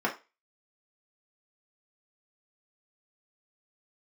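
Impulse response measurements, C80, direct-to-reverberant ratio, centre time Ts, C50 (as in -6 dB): 18.5 dB, -3.5 dB, 15 ms, 12.0 dB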